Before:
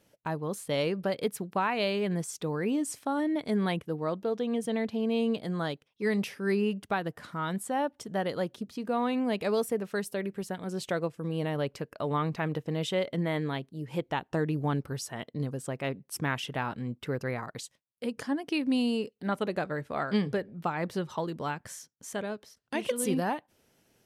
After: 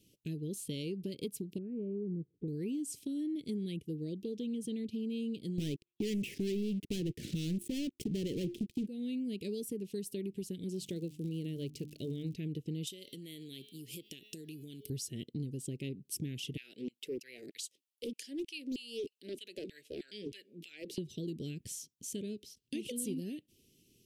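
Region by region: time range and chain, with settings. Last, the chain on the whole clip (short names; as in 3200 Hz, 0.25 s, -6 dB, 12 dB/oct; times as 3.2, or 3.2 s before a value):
1.58–2.48 Chebyshev low-pass 1100 Hz, order 4 + bell 740 Hz -14 dB 0.46 oct
5.58–8.87 resonant high shelf 3200 Hz -12 dB, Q 1.5 + de-hum 350 Hz, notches 3 + sample leveller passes 5
10.72–12.33 notches 50/100/150/200/250/300 Hz + crackle 120/s -43 dBFS
12.87–14.9 de-hum 212 Hz, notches 28 + compressor 10:1, threshold -37 dBFS + RIAA curve recording
16.57–20.98 compressor 3:1, threshold -30 dBFS + LFO high-pass saw down 3.2 Hz 270–2500 Hz + Doppler distortion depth 0.62 ms
whole clip: Chebyshev band-stop 380–2800 Hz, order 3; dynamic EQ 3000 Hz, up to -4 dB, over -53 dBFS, Q 1.1; compressor 4:1, threshold -38 dBFS; gain +2 dB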